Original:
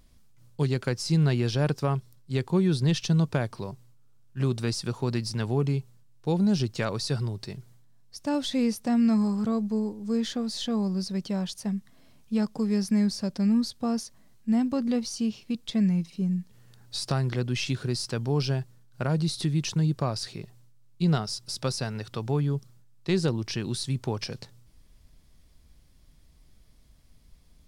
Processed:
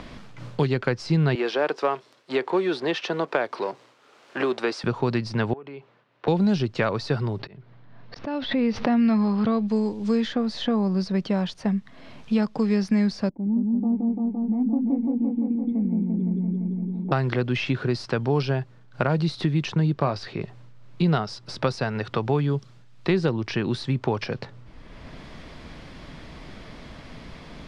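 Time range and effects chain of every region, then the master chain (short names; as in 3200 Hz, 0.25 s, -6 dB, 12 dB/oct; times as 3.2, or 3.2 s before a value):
1.35–4.84 G.711 law mismatch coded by mu + HPF 330 Hz 24 dB/oct
5.53–6.28 BPF 380–2700 Hz + compressor 20:1, threshold -43 dBFS
7.39–9.68 LPF 4600 Hz 24 dB/oct + auto swell 0.558 s + backwards sustainer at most 94 dB/s
13.29–17.12 vocal tract filter u + repeats that get brighter 0.171 s, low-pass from 750 Hz, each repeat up 1 oct, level 0 dB
19.93–20.41 LPF 3800 Hz 6 dB/oct + doubler 21 ms -12.5 dB
whole clip: LPF 2600 Hz 12 dB/oct; low shelf 260 Hz -8 dB; three-band squash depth 70%; gain +8.5 dB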